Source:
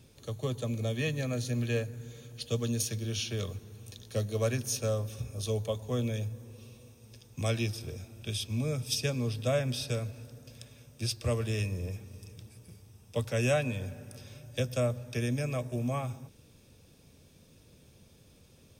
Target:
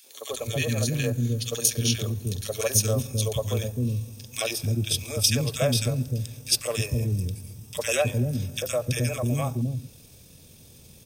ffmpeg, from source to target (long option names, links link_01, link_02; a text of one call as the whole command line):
ffmpeg -i in.wav -filter_complex "[0:a]acontrast=87,crystalizer=i=1.5:c=0,atempo=1.7,acrossover=split=380|1400[link_01][link_02][link_03];[link_02]adelay=40[link_04];[link_01]adelay=300[link_05];[link_05][link_04][link_03]amix=inputs=3:normalize=0" out.wav